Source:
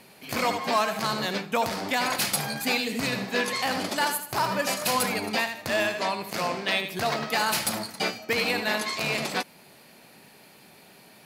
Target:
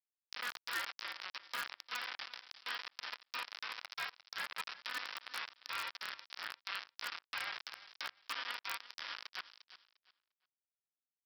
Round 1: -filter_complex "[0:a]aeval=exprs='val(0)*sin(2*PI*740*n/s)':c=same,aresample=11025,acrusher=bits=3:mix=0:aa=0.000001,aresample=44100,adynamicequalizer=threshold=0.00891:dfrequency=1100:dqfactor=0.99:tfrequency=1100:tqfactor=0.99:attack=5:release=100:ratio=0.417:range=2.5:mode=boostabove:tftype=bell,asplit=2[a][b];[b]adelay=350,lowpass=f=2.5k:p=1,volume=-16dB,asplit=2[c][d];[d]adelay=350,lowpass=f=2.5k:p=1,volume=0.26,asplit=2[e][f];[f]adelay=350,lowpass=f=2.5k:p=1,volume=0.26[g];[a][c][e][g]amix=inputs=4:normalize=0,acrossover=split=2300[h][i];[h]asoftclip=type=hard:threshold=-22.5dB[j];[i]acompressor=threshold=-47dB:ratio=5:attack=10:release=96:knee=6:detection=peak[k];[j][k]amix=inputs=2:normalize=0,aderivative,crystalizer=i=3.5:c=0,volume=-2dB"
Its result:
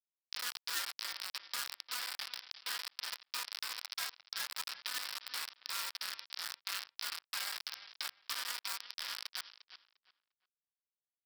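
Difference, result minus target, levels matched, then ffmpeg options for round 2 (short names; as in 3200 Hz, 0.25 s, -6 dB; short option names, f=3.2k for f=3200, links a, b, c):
hard clip: distortion +19 dB; compressor: peak gain reduction -9 dB
-filter_complex "[0:a]aeval=exprs='val(0)*sin(2*PI*740*n/s)':c=same,aresample=11025,acrusher=bits=3:mix=0:aa=0.000001,aresample=44100,adynamicequalizer=threshold=0.00891:dfrequency=1100:dqfactor=0.99:tfrequency=1100:tqfactor=0.99:attack=5:release=100:ratio=0.417:range=2.5:mode=boostabove:tftype=bell,asplit=2[a][b];[b]adelay=350,lowpass=f=2.5k:p=1,volume=-16dB,asplit=2[c][d];[d]adelay=350,lowpass=f=2.5k:p=1,volume=0.26,asplit=2[e][f];[f]adelay=350,lowpass=f=2.5k:p=1,volume=0.26[g];[a][c][e][g]amix=inputs=4:normalize=0,acrossover=split=2300[h][i];[h]asoftclip=type=hard:threshold=-15dB[j];[i]acompressor=threshold=-58dB:ratio=5:attack=10:release=96:knee=6:detection=peak[k];[j][k]amix=inputs=2:normalize=0,aderivative,crystalizer=i=3.5:c=0,volume=-2dB"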